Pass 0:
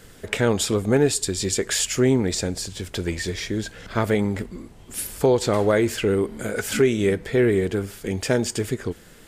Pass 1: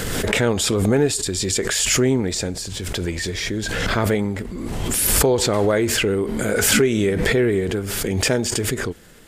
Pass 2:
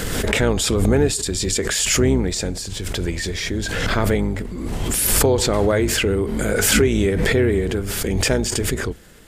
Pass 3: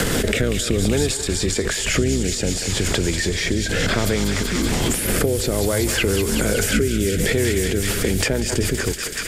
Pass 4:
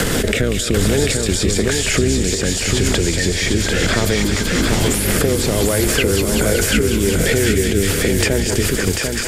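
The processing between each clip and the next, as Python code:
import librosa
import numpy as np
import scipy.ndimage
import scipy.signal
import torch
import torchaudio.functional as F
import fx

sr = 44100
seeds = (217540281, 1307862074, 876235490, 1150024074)

y1 = fx.pre_swell(x, sr, db_per_s=21.0)
y2 = fx.octave_divider(y1, sr, octaves=2, level_db=-2.0)
y3 = fx.echo_thinned(y2, sr, ms=189, feedback_pct=84, hz=1000.0, wet_db=-9.5)
y3 = fx.rotary_switch(y3, sr, hz=0.6, then_hz=7.5, switch_at_s=7.34)
y3 = fx.band_squash(y3, sr, depth_pct=100)
y4 = y3 + 10.0 ** (-4.5 / 20.0) * np.pad(y3, (int(743 * sr / 1000.0), 0))[:len(y3)]
y4 = y4 * librosa.db_to_amplitude(2.5)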